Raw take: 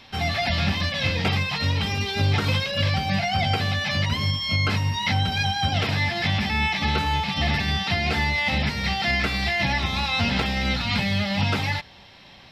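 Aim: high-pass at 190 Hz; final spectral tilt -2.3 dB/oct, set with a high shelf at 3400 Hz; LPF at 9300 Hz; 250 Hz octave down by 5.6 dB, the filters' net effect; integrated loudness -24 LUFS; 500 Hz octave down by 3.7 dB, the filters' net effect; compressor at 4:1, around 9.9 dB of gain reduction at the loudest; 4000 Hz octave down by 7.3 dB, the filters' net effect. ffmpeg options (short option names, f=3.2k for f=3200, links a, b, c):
-af "highpass=190,lowpass=9.3k,equalizer=f=250:t=o:g=-3.5,equalizer=f=500:t=o:g=-4,highshelf=f=3.4k:g=-5,equalizer=f=4k:t=o:g=-6,acompressor=threshold=-36dB:ratio=4,volume=12.5dB"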